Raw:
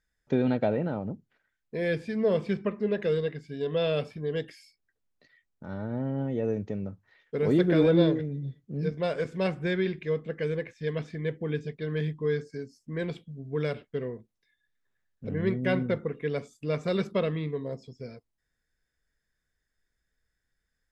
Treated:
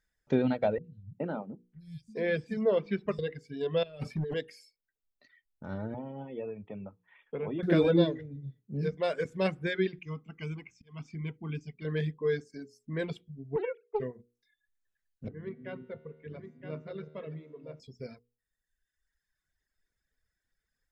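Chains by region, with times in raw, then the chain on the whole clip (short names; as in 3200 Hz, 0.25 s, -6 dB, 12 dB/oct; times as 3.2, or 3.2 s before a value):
0.78–3.19 three bands offset in time lows, highs, mids 60/420 ms, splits 150/4800 Hz + mismatched tape noise reduction decoder only
3.83–4.34 tone controls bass +5 dB, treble 0 dB + negative-ratio compressor -31 dBFS, ratio -0.5 + hard clip -26.5 dBFS
5.94–7.63 rippled Chebyshev low-pass 3500 Hz, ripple 9 dB + three-band squash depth 70%
10.02–11.85 fixed phaser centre 2600 Hz, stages 8 + auto swell 0.31 s
13.56–14 sine-wave speech + high shelf 2800 Hz -7 dB + Doppler distortion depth 0.47 ms
15.28–17.8 air absorption 280 m + resonator 77 Hz, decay 2 s, mix 80% + echo 0.968 s -6.5 dB
whole clip: notches 60/120/180/240/300/360/420/480 Hz; reverb removal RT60 1.5 s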